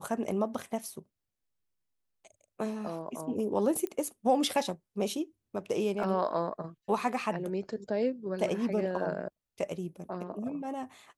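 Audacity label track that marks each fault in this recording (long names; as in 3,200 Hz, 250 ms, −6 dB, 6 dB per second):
0.590000	0.590000	drop-out 2.4 ms
3.870000	3.870000	click −22 dBFS
6.030000	6.030000	drop-out 4.2 ms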